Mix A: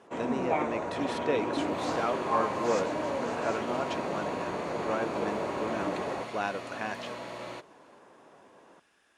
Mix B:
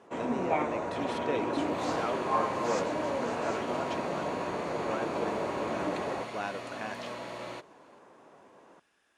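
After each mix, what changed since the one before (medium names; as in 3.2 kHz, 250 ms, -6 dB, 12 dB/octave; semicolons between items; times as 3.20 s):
speech -4.0 dB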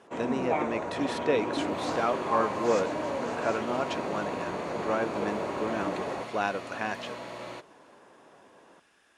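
speech +7.0 dB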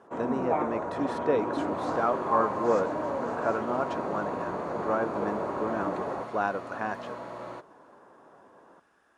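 master: add resonant high shelf 1.8 kHz -8.5 dB, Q 1.5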